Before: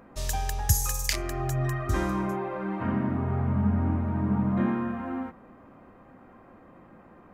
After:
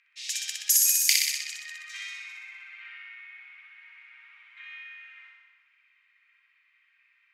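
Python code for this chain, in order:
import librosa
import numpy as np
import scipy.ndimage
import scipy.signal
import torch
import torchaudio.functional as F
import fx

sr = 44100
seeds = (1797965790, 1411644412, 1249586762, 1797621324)

y = scipy.signal.sosfilt(scipy.signal.ellip(4, 1.0, 80, 2200.0, 'highpass', fs=sr, output='sos'), x)
y = fx.room_flutter(y, sr, wall_m=10.7, rt60_s=1.3)
y = fx.env_lowpass(y, sr, base_hz=2800.0, full_db=-26.0)
y = y * librosa.db_to_amplitude(6.5)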